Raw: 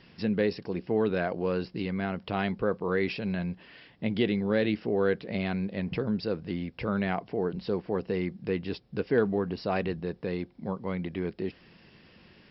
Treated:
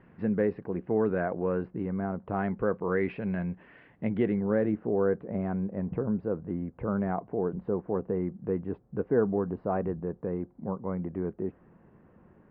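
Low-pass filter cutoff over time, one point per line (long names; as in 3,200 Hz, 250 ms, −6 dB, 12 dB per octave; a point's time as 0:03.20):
low-pass filter 24 dB per octave
0:01.54 1,700 Hz
0:02.18 1,200 Hz
0:02.63 2,000 Hz
0:04.04 2,000 Hz
0:04.84 1,300 Hz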